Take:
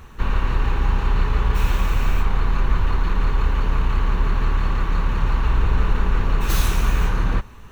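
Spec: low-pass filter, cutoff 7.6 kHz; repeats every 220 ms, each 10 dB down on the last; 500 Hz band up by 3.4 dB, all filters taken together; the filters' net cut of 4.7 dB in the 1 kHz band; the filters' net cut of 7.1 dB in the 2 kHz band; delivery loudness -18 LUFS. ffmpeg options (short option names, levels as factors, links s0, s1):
-af "lowpass=7600,equalizer=f=500:t=o:g=5.5,equalizer=f=1000:t=o:g=-4.5,equalizer=f=2000:t=o:g=-8.5,aecho=1:1:220|440|660|880:0.316|0.101|0.0324|0.0104,volume=1.88"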